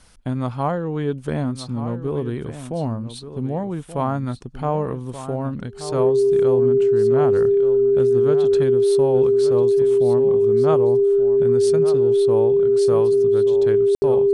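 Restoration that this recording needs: band-stop 400 Hz, Q 30; room tone fill 13.95–14.02 s; inverse comb 1179 ms -12 dB

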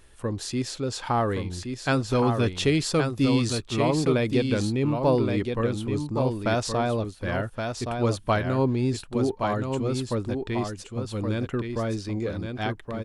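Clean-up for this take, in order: inverse comb 1121 ms -5.5 dB

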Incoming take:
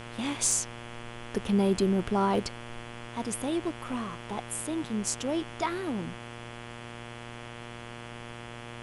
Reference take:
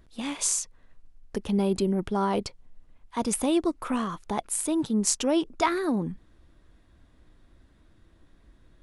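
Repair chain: clip repair -16 dBFS; de-hum 118.5 Hz, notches 29; noise reduction 15 dB, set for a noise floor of -43 dBFS; gain correction +6.5 dB, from 3.07 s

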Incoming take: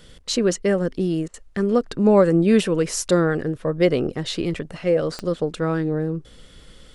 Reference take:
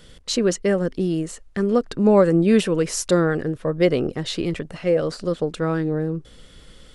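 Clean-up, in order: de-click; interpolate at 1.28 s, 57 ms

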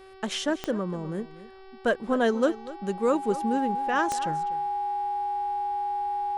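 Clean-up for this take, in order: de-click; de-hum 382.2 Hz, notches 14; band-stop 820 Hz, Q 30; inverse comb 245 ms -16.5 dB

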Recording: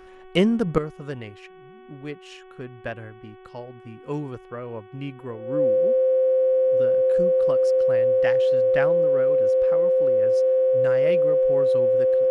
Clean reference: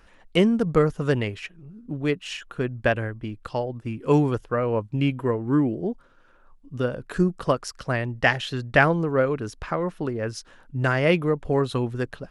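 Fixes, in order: de-hum 373.3 Hz, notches 9; band-stop 520 Hz, Q 30; trim 0 dB, from 0.78 s +10.5 dB

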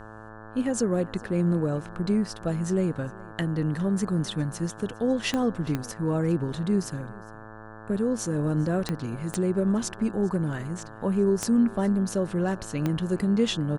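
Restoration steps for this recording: de-click; de-hum 109.2 Hz, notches 16; inverse comb 408 ms -22.5 dB

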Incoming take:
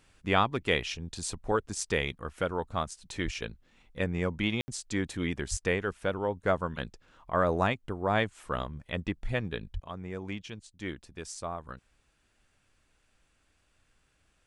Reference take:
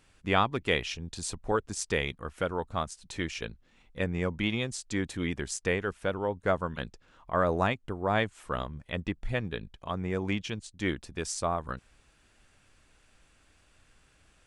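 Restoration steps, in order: de-plosive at 3.24/5.50/9.73 s; room tone fill 4.61–4.68 s; gain correction +7 dB, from 9.76 s

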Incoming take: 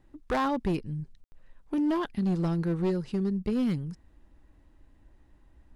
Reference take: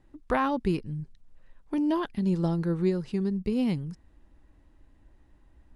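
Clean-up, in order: clip repair -22.5 dBFS; room tone fill 1.24–1.32 s

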